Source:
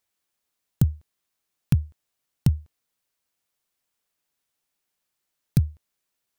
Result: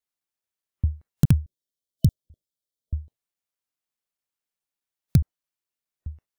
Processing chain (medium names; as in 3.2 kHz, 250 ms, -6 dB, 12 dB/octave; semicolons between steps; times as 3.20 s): slices played last to first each 209 ms, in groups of 3; spectral selection erased 1.42–3.08 s, 650–3000 Hz; spectral noise reduction 12 dB; trim +1.5 dB